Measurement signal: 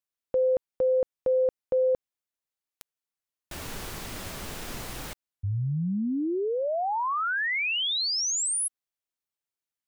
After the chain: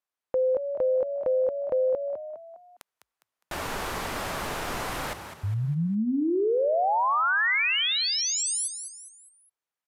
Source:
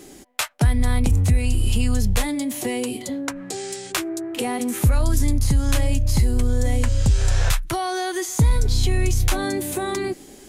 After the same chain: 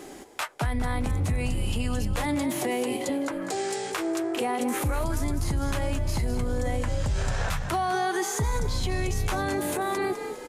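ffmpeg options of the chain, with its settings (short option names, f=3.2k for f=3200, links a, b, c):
-filter_complex "[0:a]equalizer=f=960:w=0.46:g=11,dynaudnorm=f=290:g=11:m=4.5dB,alimiter=limit=-13dB:level=0:latency=1:release=87,asplit=2[a][b];[b]asplit=4[c][d][e][f];[c]adelay=204,afreqshift=50,volume=-10dB[g];[d]adelay=408,afreqshift=100,volume=-17.7dB[h];[e]adelay=612,afreqshift=150,volume=-25.5dB[i];[f]adelay=816,afreqshift=200,volume=-33.2dB[j];[g][h][i][j]amix=inputs=4:normalize=0[k];[a][k]amix=inputs=2:normalize=0,acompressor=threshold=-18dB:ratio=2.5:attack=3.6:release=177:knee=6,aresample=32000,aresample=44100,volume=-4dB"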